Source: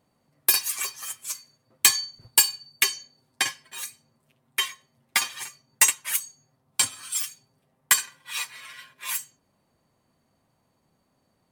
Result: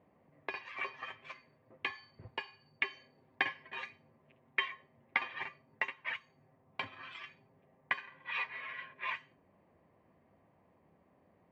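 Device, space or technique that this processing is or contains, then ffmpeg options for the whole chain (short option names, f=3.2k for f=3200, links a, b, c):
bass amplifier: -filter_complex "[0:a]acompressor=threshold=-28dB:ratio=4,lowpass=5.6k,highpass=74,equalizer=f=130:t=q:w=4:g=-10,equalizer=f=240:t=q:w=4:g=-5,equalizer=f=870:t=q:w=4:g=-3,equalizer=f=1.4k:t=q:w=4:g=-10,lowpass=f=2.2k:w=0.5412,lowpass=f=2.2k:w=1.3066,asettb=1/sr,asplit=3[a][b][c];[a]atrim=end=2.904[d];[b]atrim=start=2.9:end=4.69,asetpts=PTS-STARTPTS,afade=t=in:d=0.004:c=qsin,afade=t=out:st=1.786:d=0.004:c=qsin,highshelf=f=6k:g=9[e];[c]atrim=start=4.686[f];[d][e]acrossfade=d=0.004:c1=hsin:c2=qsin[g];[g][f]acrossfade=d=0.004:c1=qsin:c2=hsin,volume=5dB"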